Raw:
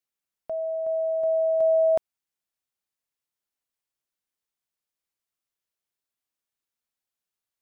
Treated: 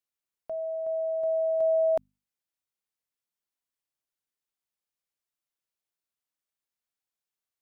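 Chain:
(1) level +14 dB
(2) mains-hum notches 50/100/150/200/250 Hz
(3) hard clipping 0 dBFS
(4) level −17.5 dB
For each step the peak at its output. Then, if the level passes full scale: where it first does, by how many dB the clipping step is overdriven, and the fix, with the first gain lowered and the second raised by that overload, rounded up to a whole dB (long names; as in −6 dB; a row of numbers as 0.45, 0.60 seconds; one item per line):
−2.5, −2.5, −2.5, −20.0 dBFS
no step passes full scale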